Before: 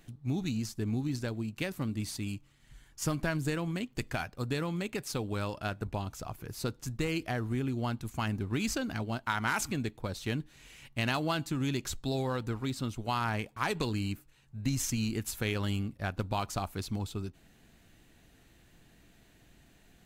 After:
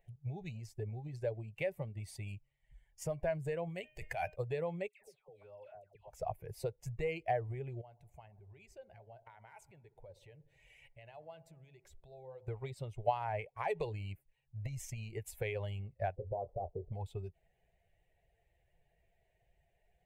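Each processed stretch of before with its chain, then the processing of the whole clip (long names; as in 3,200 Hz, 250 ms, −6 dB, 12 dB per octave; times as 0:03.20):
0:03.69–0:04.36: high-shelf EQ 3,000 Hz +6.5 dB + hum removal 307.7 Hz, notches 10 + compressor whose output falls as the input rises −37 dBFS
0:04.88–0:06.10: low-shelf EQ 160 Hz −8 dB + downward compressor 10 to 1, threshold −47 dBFS + all-pass dispersion lows, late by 140 ms, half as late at 1,200 Hz
0:07.81–0:12.48: downward compressor 5 to 1, threshold −47 dBFS + delay with a low-pass on its return 61 ms, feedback 78%, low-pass 1,200 Hz, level −13.5 dB
0:16.16–0:16.92: double-tracking delay 24 ms −11 dB + downward compressor 10 to 1, threshold −33 dBFS + low-pass with resonance 480 Hz, resonance Q 1.7
whole clip: spectral dynamics exaggerated over time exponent 1.5; downward compressor, threshold −39 dBFS; drawn EQ curve 160 Hz 0 dB, 260 Hz −22 dB, 420 Hz +7 dB, 610 Hz +13 dB, 860 Hz +8 dB, 1,300 Hz −10 dB, 2,100 Hz +5 dB, 4,200 Hz −13 dB, 8,700 Hz −6 dB, 13,000 Hz −9 dB; level +2.5 dB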